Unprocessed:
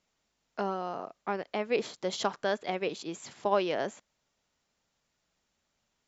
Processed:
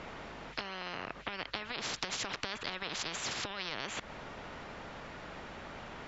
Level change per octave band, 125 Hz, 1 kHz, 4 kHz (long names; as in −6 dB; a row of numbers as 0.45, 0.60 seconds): −2.5, −7.0, +3.5 decibels